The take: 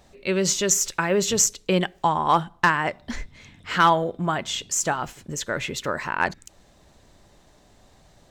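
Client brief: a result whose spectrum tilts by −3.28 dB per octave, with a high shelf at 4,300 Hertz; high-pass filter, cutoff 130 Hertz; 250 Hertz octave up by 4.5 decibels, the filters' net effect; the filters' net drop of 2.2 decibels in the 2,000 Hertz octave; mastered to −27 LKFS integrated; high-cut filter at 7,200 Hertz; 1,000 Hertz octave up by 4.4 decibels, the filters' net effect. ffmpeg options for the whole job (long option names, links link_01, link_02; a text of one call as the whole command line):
ffmpeg -i in.wav -af "highpass=130,lowpass=7200,equalizer=frequency=250:width_type=o:gain=8,equalizer=frequency=1000:width_type=o:gain=6,equalizer=frequency=2000:width_type=o:gain=-7,highshelf=frequency=4300:gain=6,volume=-6.5dB" out.wav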